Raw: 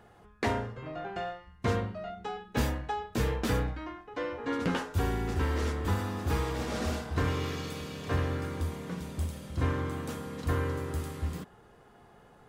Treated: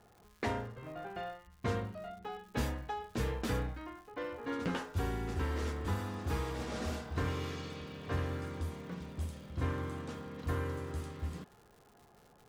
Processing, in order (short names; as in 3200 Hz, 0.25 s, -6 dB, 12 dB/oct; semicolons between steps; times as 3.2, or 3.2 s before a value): low-pass opened by the level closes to 1600 Hz, open at -27.5 dBFS; crackle 240/s -46 dBFS; gain -5.5 dB